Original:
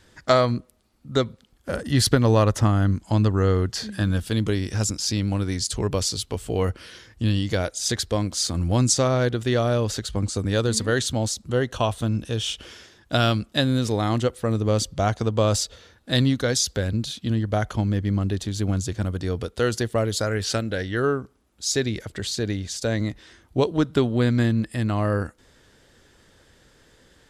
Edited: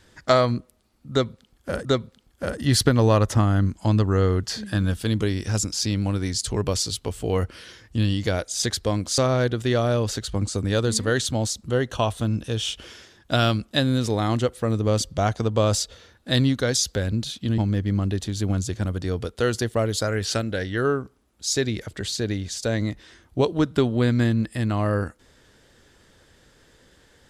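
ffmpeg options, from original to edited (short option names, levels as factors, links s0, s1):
-filter_complex "[0:a]asplit=4[s0][s1][s2][s3];[s0]atrim=end=1.852[s4];[s1]atrim=start=1.108:end=8.442[s5];[s2]atrim=start=8.988:end=17.392[s6];[s3]atrim=start=17.768[s7];[s4][s5]acrossfade=d=0.004:c1=hsin:c2=hsin[s8];[s8][s6]acrossfade=d=0.004:c1=hsin:c2=hsin[s9];[s9][s7]acrossfade=d=0.004:c1=hsin:c2=hsin"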